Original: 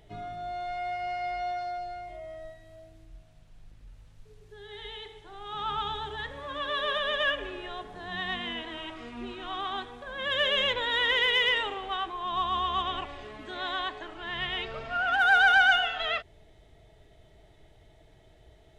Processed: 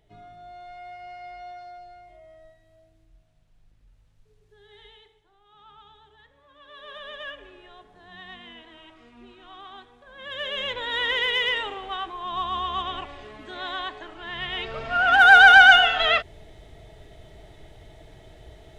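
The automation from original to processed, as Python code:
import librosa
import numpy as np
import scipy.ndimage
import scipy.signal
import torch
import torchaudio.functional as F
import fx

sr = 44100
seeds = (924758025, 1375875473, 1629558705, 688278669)

y = fx.gain(x, sr, db=fx.line((4.81, -8.0), (5.43, -19.5), (6.56, -19.5), (7.03, -10.0), (10.0, -10.0), (10.99, 0.5), (14.43, 0.5), (15.2, 9.5)))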